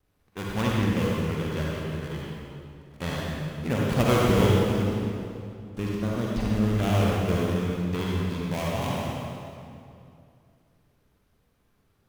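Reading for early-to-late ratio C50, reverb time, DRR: -3.0 dB, 2.5 s, -4.5 dB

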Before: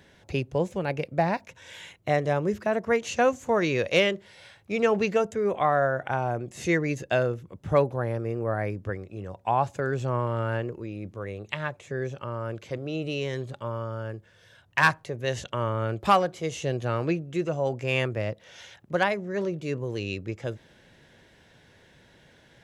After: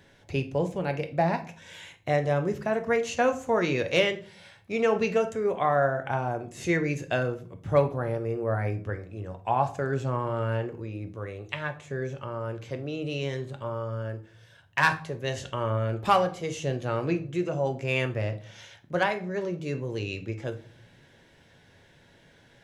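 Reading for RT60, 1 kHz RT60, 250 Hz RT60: 0.45 s, 0.45 s, 0.65 s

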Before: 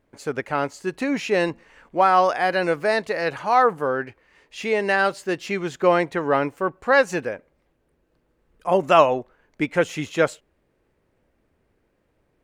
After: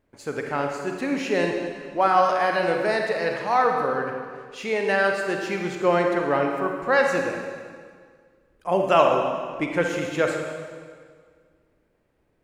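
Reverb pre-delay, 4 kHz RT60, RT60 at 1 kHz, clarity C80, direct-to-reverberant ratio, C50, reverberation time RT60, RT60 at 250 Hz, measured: 35 ms, 1.6 s, 1.8 s, 4.5 dB, 2.0 dB, 3.0 dB, 1.9 s, 2.0 s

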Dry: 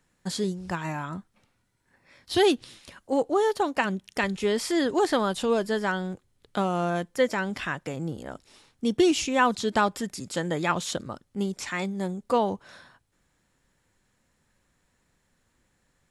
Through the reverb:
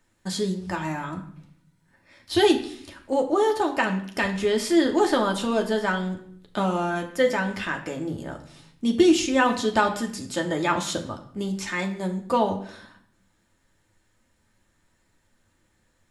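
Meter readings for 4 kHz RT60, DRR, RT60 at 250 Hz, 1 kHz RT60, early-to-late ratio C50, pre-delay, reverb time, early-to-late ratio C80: 0.55 s, 2.0 dB, 1.0 s, 0.55 s, 11.0 dB, 3 ms, 0.60 s, 13.5 dB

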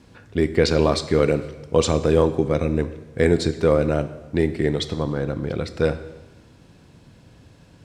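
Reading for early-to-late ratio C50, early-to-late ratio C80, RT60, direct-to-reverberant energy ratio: 13.5 dB, 15.0 dB, 1.1 s, 11.0 dB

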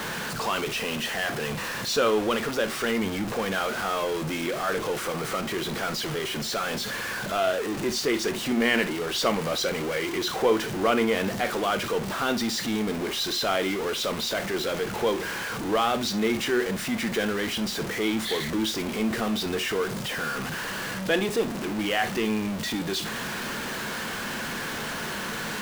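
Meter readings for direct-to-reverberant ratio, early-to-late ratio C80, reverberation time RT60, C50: 9.5 dB, 44.5 dB, no single decay rate, 15.5 dB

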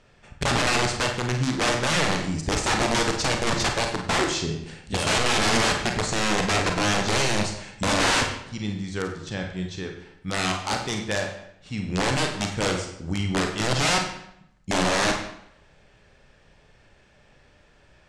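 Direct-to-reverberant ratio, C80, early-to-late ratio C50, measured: 2.5 dB, 8.5 dB, 6.0 dB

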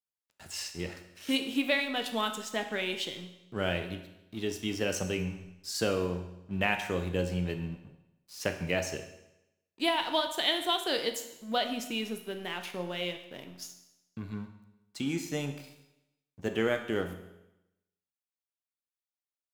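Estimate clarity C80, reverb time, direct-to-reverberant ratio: 11.5 dB, 0.90 s, 5.5 dB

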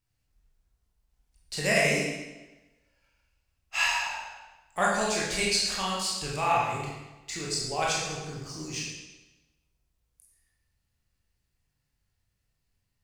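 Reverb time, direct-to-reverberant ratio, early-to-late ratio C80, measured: 1.1 s, -5.5 dB, 3.0 dB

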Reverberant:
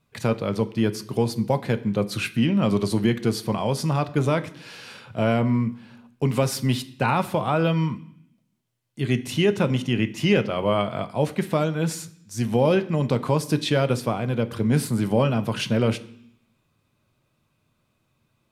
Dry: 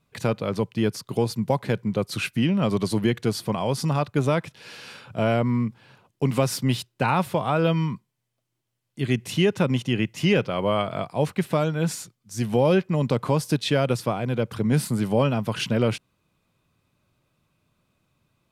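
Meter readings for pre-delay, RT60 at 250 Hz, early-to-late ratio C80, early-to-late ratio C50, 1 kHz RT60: 8 ms, 0.95 s, 19.5 dB, 17.0 dB, 0.70 s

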